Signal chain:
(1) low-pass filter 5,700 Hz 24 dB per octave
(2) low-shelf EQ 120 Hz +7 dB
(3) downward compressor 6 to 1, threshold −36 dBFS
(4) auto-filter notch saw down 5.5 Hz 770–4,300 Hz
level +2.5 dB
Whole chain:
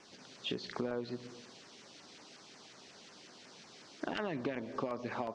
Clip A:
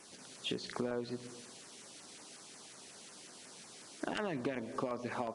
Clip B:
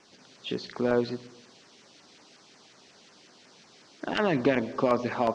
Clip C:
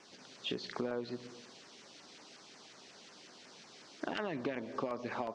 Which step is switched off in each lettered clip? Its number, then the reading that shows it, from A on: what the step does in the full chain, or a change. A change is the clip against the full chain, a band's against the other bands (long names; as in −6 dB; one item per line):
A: 1, 8 kHz band +8.0 dB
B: 3, average gain reduction 3.5 dB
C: 2, 125 Hz band −2.5 dB